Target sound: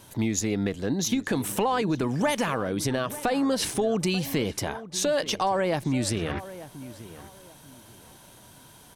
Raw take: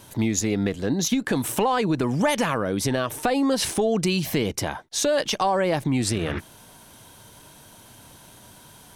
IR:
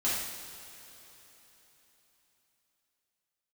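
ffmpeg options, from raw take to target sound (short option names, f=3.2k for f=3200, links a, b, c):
-filter_complex "[0:a]asettb=1/sr,asplit=3[a][b][c];[a]atrim=end=2.084[d];[b]atrim=start=2.08:end=2.68,asetpts=PTS-STARTPTS,afade=t=in:d=0.004:c=qsin,afade=t=out:st=0.596:d=0.004:c=qsin,aeval=exprs='sgn(val(0))*max(abs(val(0))-0.00282,0)':c=same[e];[c]atrim=start=2.676[f];[d][e]acrossfade=d=0.004:c1=hsin:c2=qsin[g];[g][f]acrossfade=d=0.004:c1=qsin:c2=hsin,asplit=2[h][i];[i]adelay=888,lowpass=f=2k:p=1,volume=-15dB,asplit=2[j][k];[k]adelay=888,lowpass=f=2k:p=1,volume=0.26,asplit=2[l][m];[m]adelay=888,lowpass=f=2k:p=1,volume=0.26[n];[j][l][n]amix=inputs=3:normalize=0[o];[h][o]amix=inputs=2:normalize=0,volume=-3dB"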